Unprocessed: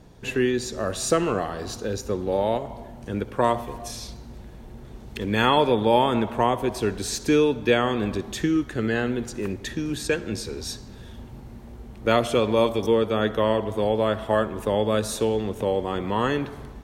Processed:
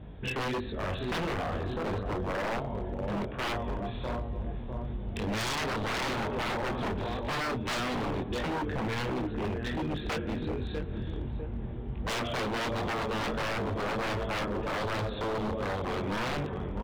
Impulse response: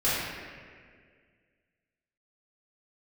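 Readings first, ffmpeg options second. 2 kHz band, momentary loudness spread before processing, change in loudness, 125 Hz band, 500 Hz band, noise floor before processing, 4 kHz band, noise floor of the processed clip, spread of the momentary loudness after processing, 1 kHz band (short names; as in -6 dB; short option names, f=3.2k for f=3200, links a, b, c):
-3.5 dB, 19 LU, -8.5 dB, -3.0 dB, -11.0 dB, -42 dBFS, -5.5 dB, -37 dBFS, 5 LU, -7.0 dB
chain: -filter_complex "[0:a]lowshelf=f=120:g=10,asplit=2[a][b];[b]acompressor=threshold=-32dB:ratio=5,volume=2.5dB[c];[a][c]amix=inputs=2:normalize=0,aresample=8000,aresample=44100,asplit=2[d][e];[e]adelay=650,lowpass=f=1.1k:p=1,volume=-8.5dB,asplit=2[f][g];[g]adelay=650,lowpass=f=1.1k:p=1,volume=0.47,asplit=2[h][i];[i]adelay=650,lowpass=f=1.1k:p=1,volume=0.47,asplit=2[j][k];[k]adelay=650,lowpass=f=1.1k:p=1,volume=0.47,asplit=2[l][m];[m]adelay=650,lowpass=f=1.1k:p=1,volume=0.47[n];[f][h][j][l][n]amix=inputs=5:normalize=0[o];[d][o]amix=inputs=2:normalize=0,flanger=delay=19.5:depth=5.1:speed=1.4,highpass=40,aeval=exprs='0.075*(abs(mod(val(0)/0.075+3,4)-2)-1)':c=same,volume=-4dB"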